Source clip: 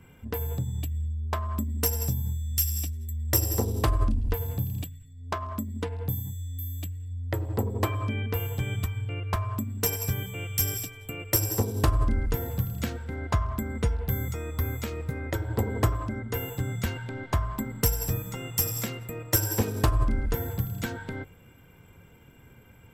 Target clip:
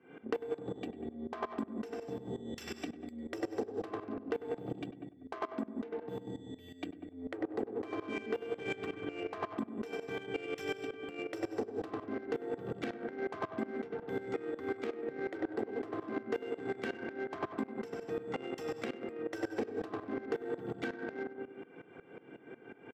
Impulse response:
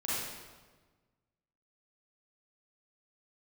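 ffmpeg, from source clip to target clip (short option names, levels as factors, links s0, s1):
-filter_complex "[0:a]bandreject=f=60:t=h:w=6,bandreject=f=120:t=h:w=6,bandreject=f=180:t=h:w=6,bandreject=f=240:t=h:w=6,bandreject=f=300:t=h:w=6,bandreject=f=360:t=h:w=6,bandreject=f=420:t=h:w=6,asplit=2[s0][s1];[s1]acrusher=bits=4:mix=0:aa=0.5,volume=0.501[s2];[s0][s2]amix=inputs=2:normalize=0,highpass=f=230:w=0.5412,highpass=f=230:w=1.3066,lowshelf=f=300:g=11.5,aecho=1:1:2.6:0.42,asplit=2[s3][s4];[s4]adelay=97,lowpass=f=1600:p=1,volume=0.596,asplit=2[s5][s6];[s6]adelay=97,lowpass=f=1600:p=1,volume=0.48,asplit=2[s7][s8];[s8]adelay=97,lowpass=f=1600:p=1,volume=0.48,asplit=2[s9][s10];[s10]adelay=97,lowpass=f=1600:p=1,volume=0.48,asplit=2[s11][s12];[s12]adelay=97,lowpass=f=1600:p=1,volume=0.48,asplit=2[s13][s14];[s14]adelay=97,lowpass=f=1600:p=1,volume=0.48[s15];[s3][s5][s7][s9][s11][s13][s15]amix=inputs=7:normalize=0,asplit=2[s16][s17];[s17]highpass=f=720:p=1,volume=2.82,asoftclip=type=tanh:threshold=0.631[s18];[s16][s18]amix=inputs=2:normalize=0,lowpass=f=1500:p=1,volume=0.501,adynamicsmooth=sensitivity=2.5:basefreq=2500,equalizer=f=1000:w=2.3:g=-6.5,acompressor=threshold=0.0112:ratio=6,aeval=exprs='val(0)*pow(10,-18*if(lt(mod(-5.5*n/s,1),2*abs(-5.5)/1000),1-mod(-5.5*n/s,1)/(2*abs(-5.5)/1000),(mod(-5.5*n/s,1)-2*abs(-5.5)/1000)/(1-2*abs(-5.5)/1000))/20)':c=same,volume=2.82"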